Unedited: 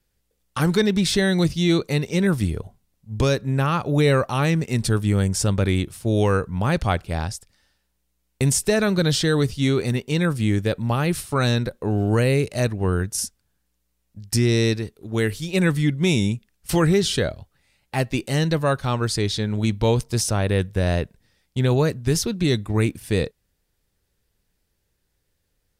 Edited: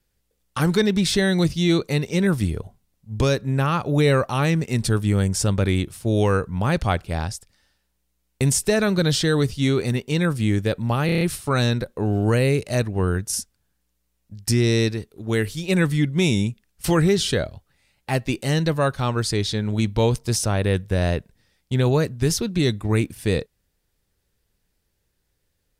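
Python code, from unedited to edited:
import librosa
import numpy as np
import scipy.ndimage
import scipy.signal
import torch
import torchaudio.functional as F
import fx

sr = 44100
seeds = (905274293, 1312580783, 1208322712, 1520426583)

y = fx.edit(x, sr, fx.stutter(start_s=11.06, slice_s=0.03, count=6), tone=tone)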